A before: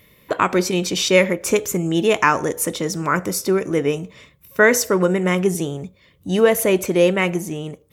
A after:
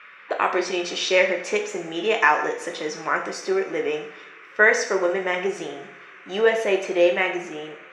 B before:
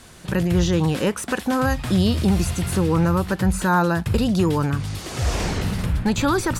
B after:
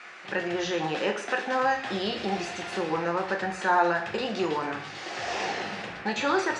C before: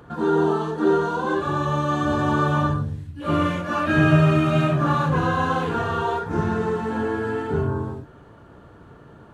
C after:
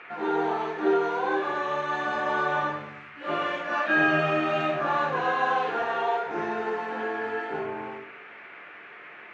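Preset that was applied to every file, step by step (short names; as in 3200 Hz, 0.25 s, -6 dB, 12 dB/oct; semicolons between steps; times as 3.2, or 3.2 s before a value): speaker cabinet 380–6000 Hz, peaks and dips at 390 Hz +4 dB, 740 Hz +9 dB, 1800 Hz +7 dB, 2600 Hz +5 dB; band noise 1100–2500 Hz -41 dBFS; two-slope reverb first 0.58 s, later 4 s, from -27 dB, DRR 3 dB; gain -7 dB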